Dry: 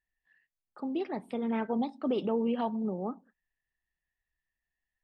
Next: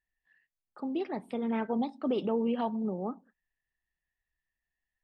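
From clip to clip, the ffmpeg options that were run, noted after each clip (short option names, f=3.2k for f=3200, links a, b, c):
-af anull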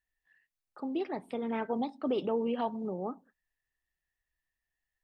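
-af "equalizer=f=210:t=o:w=0.37:g=-6"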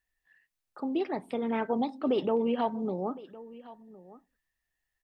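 -af "aecho=1:1:1061:0.112,volume=3.5dB"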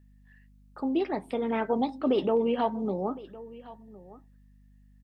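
-filter_complex "[0:a]aeval=exprs='val(0)+0.00126*(sin(2*PI*50*n/s)+sin(2*PI*2*50*n/s)/2+sin(2*PI*3*50*n/s)/3+sin(2*PI*4*50*n/s)/4+sin(2*PI*5*50*n/s)/5)':c=same,asplit=2[a][b];[b]adelay=15,volume=-13dB[c];[a][c]amix=inputs=2:normalize=0,volume=2dB"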